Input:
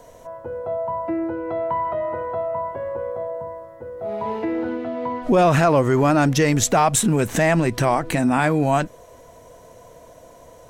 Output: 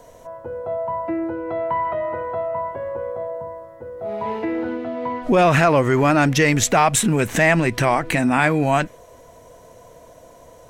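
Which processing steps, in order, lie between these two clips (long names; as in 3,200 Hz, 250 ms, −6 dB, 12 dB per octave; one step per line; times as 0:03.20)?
dynamic equaliser 2,200 Hz, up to +7 dB, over −38 dBFS, Q 1.2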